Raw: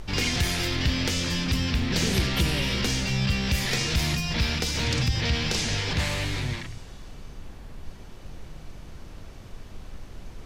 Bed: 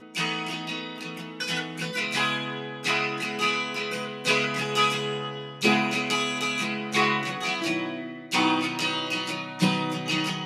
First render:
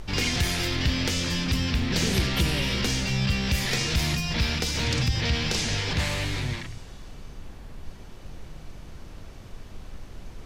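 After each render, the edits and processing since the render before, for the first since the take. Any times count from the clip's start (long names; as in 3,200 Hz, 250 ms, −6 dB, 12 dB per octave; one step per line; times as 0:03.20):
no processing that can be heard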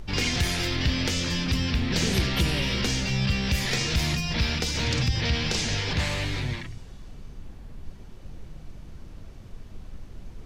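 broadband denoise 6 dB, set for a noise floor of −43 dBFS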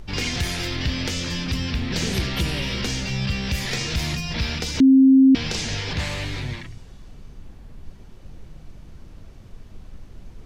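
0:04.80–0:05.35: beep over 266 Hz −9 dBFS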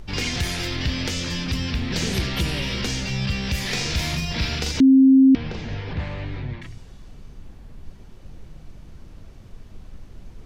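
0:03.61–0:04.72: flutter between parallel walls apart 7.1 metres, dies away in 0.42 s
0:05.35–0:06.62: head-to-tape spacing loss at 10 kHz 36 dB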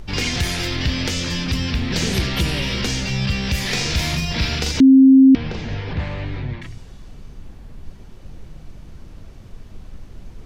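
level +3.5 dB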